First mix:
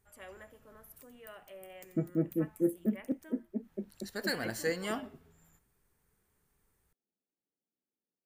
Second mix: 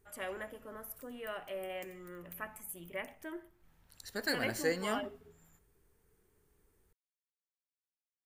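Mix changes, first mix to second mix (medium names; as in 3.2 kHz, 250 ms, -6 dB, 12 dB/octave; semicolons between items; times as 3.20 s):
first voice +9.0 dB; background: muted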